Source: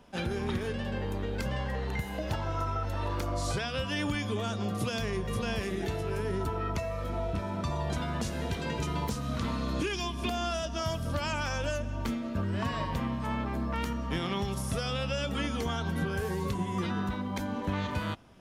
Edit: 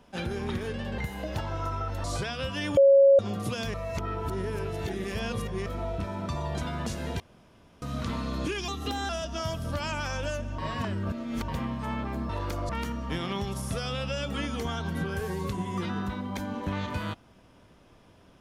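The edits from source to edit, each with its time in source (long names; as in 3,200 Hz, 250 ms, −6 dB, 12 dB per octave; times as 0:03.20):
0:00.98–0:01.93: remove
0:02.99–0:03.39: move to 0:13.70
0:04.12–0:04.54: beep over 551 Hz −13.5 dBFS
0:05.09–0:07.01: reverse
0:08.55–0:09.17: fill with room tone
0:10.03–0:10.50: play speed 114%
0:11.99–0:12.89: reverse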